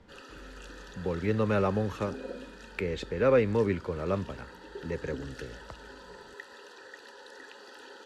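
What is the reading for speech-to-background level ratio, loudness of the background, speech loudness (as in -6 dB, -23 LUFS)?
17.0 dB, -47.0 LUFS, -30.0 LUFS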